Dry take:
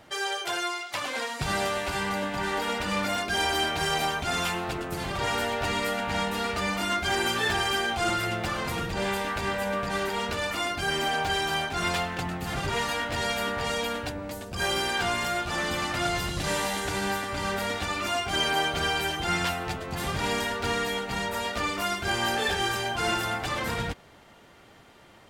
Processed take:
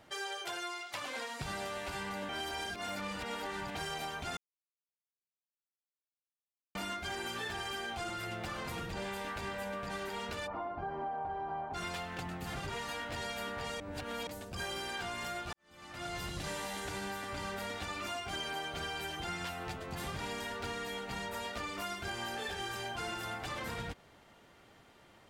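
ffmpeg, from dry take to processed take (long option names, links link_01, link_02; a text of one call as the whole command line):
ffmpeg -i in.wav -filter_complex "[0:a]asplit=3[link_01][link_02][link_03];[link_01]afade=type=out:start_time=10.46:duration=0.02[link_04];[link_02]lowpass=frequency=890:width_type=q:width=2.6,afade=type=in:start_time=10.46:duration=0.02,afade=type=out:start_time=11.73:duration=0.02[link_05];[link_03]afade=type=in:start_time=11.73:duration=0.02[link_06];[link_04][link_05][link_06]amix=inputs=3:normalize=0,asplit=8[link_07][link_08][link_09][link_10][link_11][link_12][link_13][link_14];[link_07]atrim=end=2.292[link_15];[link_08]atrim=start=2.288:end=3.752,asetpts=PTS-STARTPTS,areverse[link_16];[link_09]atrim=start=3.748:end=4.37,asetpts=PTS-STARTPTS,afade=type=out:start_time=0.618:duration=0.004:curve=hsin[link_17];[link_10]atrim=start=4.37:end=6.75,asetpts=PTS-STARTPTS,volume=0[link_18];[link_11]atrim=start=6.75:end=13.802,asetpts=PTS-STARTPTS,afade=type=in:duration=0.004:curve=hsin[link_19];[link_12]atrim=start=13.798:end=14.272,asetpts=PTS-STARTPTS,areverse[link_20];[link_13]atrim=start=14.268:end=15.53,asetpts=PTS-STARTPTS,afade=type=out:start_time=1.258:duration=0.004:curve=hsin[link_21];[link_14]atrim=start=15.53,asetpts=PTS-STARTPTS,afade=type=in:duration=0.74:curve=qua[link_22];[link_15][link_16]acrossfade=duration=0.004:curve1=hsin:curve2=hsin[link_23];[link_17][link_18][link_19]concat=n=3:v=0:a=1[link_24];[link_23][link_24]acrossfade=duration=0.004:curve1=hsin:curve2=hsin[link_25];[link_25][link_20]acrossfade=duration=0.004:curve1=hsin:curve2=hsin[link_26];[link_21][link_22]concat=n=2:v=0:a=1[link_27];[link_26][link_27]acrossfade=duration=0.004:curve1=hsin:curve2=hsin,acompressor=threshold=-29dB:ratio=6,volume=-7dB" out.wav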